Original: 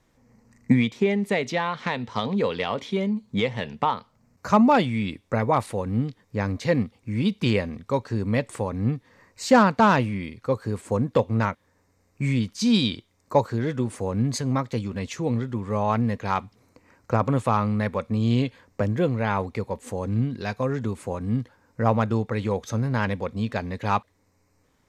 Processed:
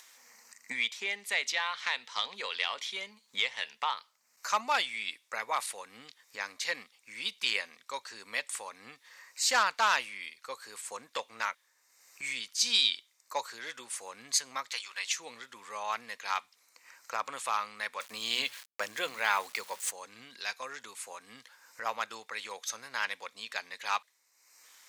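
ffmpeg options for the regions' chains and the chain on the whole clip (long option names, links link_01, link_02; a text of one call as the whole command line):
ffmpeg -i in.wav -filter_complex "[0:a]asettb=1/sr,asplit=3[link_01][link_02][link_03];[link_01]atrim=end=14.704[link_04];[link_02]atrim=start=14.7:end=15.12,asetpts=PTS-STARTPTS,afade=type=in:duration=0.004:curve=qsin,afade=type=out:start_time=0.416:duration=0.004:curve=qsin,highpass=880,highshelf=frequency=8400:gain=-6,acontrast=48[link_05];[link_03]atrim=start=15.116[link_06];[link_04][link_05]acrossfade=duration=0.004:curve1=hsin:curve2=qsin[link_07];[link_07][link_06]acrossfade=duration=0.004:curve1=qsin:curve2=hsin,asettb=1/sr,asplit=3[link_08][link_09][link_10];[link_08]atrim=end=18.004[link_11];[link_09]atrim=start=18:end=19.91,asetpts=PTS-STARTPTS,afade=type=in:duration=0.004:curve=qsin,afade=type=out:start_time=1.906:duration=0.004:curve=qsin,bandreject=frequency=60:width_type=h:width=6,bandreject=frequency=120:width_type=h:width=6,bandreject=frequency=180:width_type=h:width=6,bandreject=frequency=240:width_type=h:width=6,bandreject=frequency=300:width_type=h:width=6,acontrast=48,aeval=exprs='val(0)*gte(abs(val(0)),0.00794)':channel_layout=same[link_12];[link_10]atrim=start=19.906[link_13];[link_11][link_12]acrossfade=duration=0.004:curve1=hsin:curve2=qsin[link_14];[link_14][link_13]acrossfade=duration=0.004:curve1=qsin:curve2=hsin,highpass=1200,highshelf=frequency=2500:gain=11.5,acompressor=mode=upward:threshold=-40dB:ratio=2.5,volume=-5dB" out.wav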